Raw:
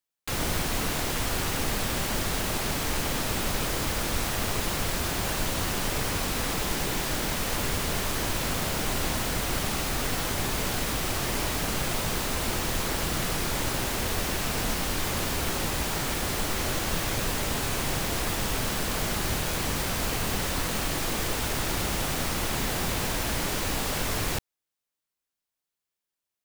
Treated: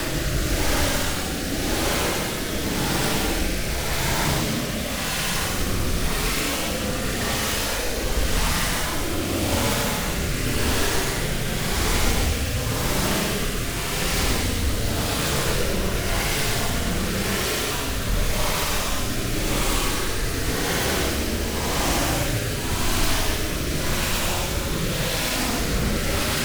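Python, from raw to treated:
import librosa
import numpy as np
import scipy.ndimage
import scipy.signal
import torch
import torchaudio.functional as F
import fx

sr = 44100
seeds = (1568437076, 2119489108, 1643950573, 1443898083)

y = fx.paulstretch(x, sr, seeds[0], factor=19.0, window_s=0.05, from_s=7.1)
y = fx.rotary(y, sr, hz=0.9)
y = y + 10.0 ** (-9.0 / 20.0) * np.pad(y, (int(139 * sr / 1000.0), 0))[:len(y)]
y = fx.doppler_dist(y, sr, depth_ms=0.33)
y = y * librosa.db_to_amplitude(7.0)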